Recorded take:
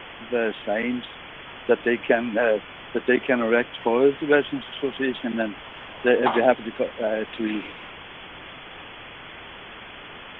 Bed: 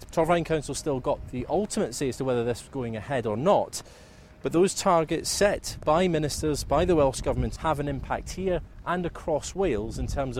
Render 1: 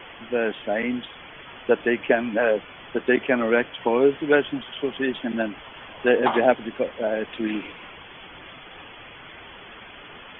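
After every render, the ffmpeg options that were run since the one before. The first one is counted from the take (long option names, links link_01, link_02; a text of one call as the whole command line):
ffmpeg -i in.wav -af "afftdn=noise_reduction=7:noise_floor=-41" out.wav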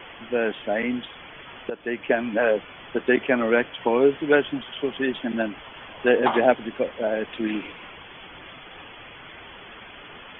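ffmpeg -i in.wav -filter_complex "[0:a]asplit=2[link_01][link_02];[link_01]atrim=end=1.7,asetpts=PTS-STARTPTS,afade=type=out:start_time=1.696:duration=0.004:curve=hsin:silence=0.149624[link_03];[link_02]atrim=start=1.7,asetpts=PTS-STARTPTS,afade=type=in:duration=0.78:curve=qsin:silence=0.149624[link_04];[link_03][link_04]concat=n=2:v=0:a=1" out.wav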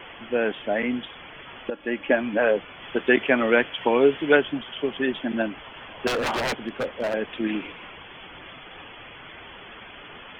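ffmpeg -i in.wav -filter_complex "[0:a]asettb=1/sr,asplit=3[link_01][link_02][link_03];[link_01]atrim=end=1.654[link_04];[link_02]atrim=start=1.65:end=2.17,asetpts=PTS-STARTPTS,afade=type=in:duration=0.004:curve=qsin,afade=type=out:start_time=0.516:duration=0.004:curve=qsin,aecho=1:1:3.6:0.52,atrim=end_sample=22932[link_05];[link_03]atrim=start=2.166[link_06];[link_04][link_05]acrossfade=duration=0.004:curve1=hsin:curve2=qsin[link_07];[link_07][link_06]acrossfade=duration=0.004:curve1=qsin:curve2=hsin,asettb=1/sr,asplit=3[link_08][link_09][link_10];[link_08]atrim=end=2.824[link_11];[link_09]atrim=start=2.82:end=4.37,asetpts=PTS-STARTPTS,afade=type=in:duration=0.004:curve=qsin,afade=type=out:start_time=1.546:duration=0.004:curve=qsin,highshelf=frequency=2300:gain=7[link_12];[link_10]atrim=start=4.366[link_13];[link_11][link_12]acrossfade=duration=0.004:curve1=hsin:curve2=qsin[link_14];[link_14][link_13]acrossfade=duration=0.004:curve1=qsin:curve2=hsin,asettb=1/sr,asplit=3[link_15][link_16][link_17];[link_15]atrim=end=6.074[link_18];[link_16]atrim=start=6.07:end=7.14,asetpts=PTS-STARTPTS,afade=type=in:duration=0.004:curve=qsin,afade=type=out:start_time=1.066:duration=0.004:curve=qsin,aeval=exprs='0.1*(abs(mod(val(0)/0.1+3,4)-2)-1)':channel_layout=same[link_19];[link_17]atrim=start=7.136[link_20];[link_18][link_19]acrossfade=duration=0.004:curve1=hsin:curve2=qsin[link_21];[link_21][link_20]acrossfade=duration=0.004:curve1=qsin:curve2=hsin" out.wav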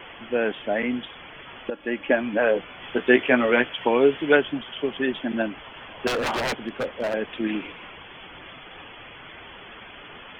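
ffmpeg -i in.wav -filter_complex "[0:a]asettb=1/sr,asplit=3[link_01][link_02][link_03];[link_01]atrim=end=2.534[link_04];[link_02]atrim=start=2.53:end=3.74,asetpts=PTS-STARTPTS,afade=type=in:duration=0.004:curve=qsin,afade=type=out:start_time=1.206:duration=0.004:curve=qsin,asplit=2[link_05][link_06];[link_06]adelay=16,volume=-6dB[link_07];[link_05][link_07]amix=inputs=2:normalize=0,atrim=end_sample=53361[link_08];[link_03]atrim=start=3.736[link_09];[link_04][link_08]acrossfade=duration=0.004:curve1=hsin:curve2=qsin[link_10];[link_10][link_09]acrossfade=duration=0.004:curve1=qsin:curve2=hsin" out.wav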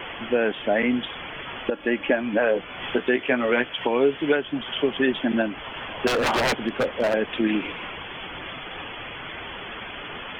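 ffmpeg -i in.wav -filter_complex "[0:a]asplit=2[link_01][link_02];[link_02]acompressor=threshold=-30dB:ratio=6,volume=2dB[link_03];[link_01][link_03]amix=inputs=2:normalize=0,alimiter=limit=-10dB:level=0:latency=1:release=348" out.wav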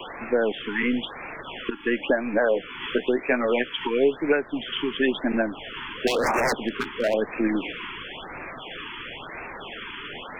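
ffmpeg -i in.wav -filter_complex "[0:a]acrossover=split=210|1400|2600[link_01][link_02][link_03][link_04];[link_01]aeval=exprs='max(val(0),0)':channel_layout=same[link_05];[link_05][link_02][link_03][link_04]amix=inputs=4:normalize=0,afftfilt=real='re*(1-between(b*sr/1024,580*pow(3900/580,0.5+0.5*sin(2*PI*0.98*pts/sr))/1.41,580*pow(3900/580,0.5+0.5*sin(2*PI*0.98*pts/sr))*1.41))':imag='im*(1-between(b*sr/1024,580*pow(3900/580,0.5+0.5*sin(2*PI*0.98*pts/sr))/1.41,580*pow(3900/580,0.5+0.5*sin(2*PI*0.98*pts/sr))*1.41))':win_size=1024:overlap=0.75" out.wav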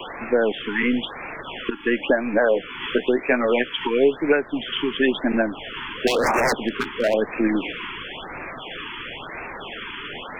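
ffmpeg -i in.wav -af "volume=3dB" out.wav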